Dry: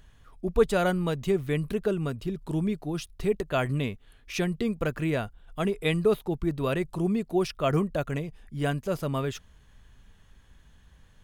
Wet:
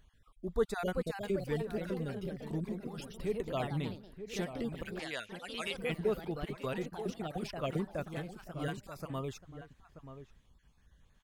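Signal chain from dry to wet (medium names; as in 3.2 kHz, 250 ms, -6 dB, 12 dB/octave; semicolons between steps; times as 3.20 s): random holes in the spectrogram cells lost 26%; ever faster or slower copies 449 ms, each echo +2 st, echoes 3, each echo -6 dB; 4.99–5.77 s: frequency weighting ITU-R 468; echo from a far wall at 160 m, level -11 dB; trim -9 dB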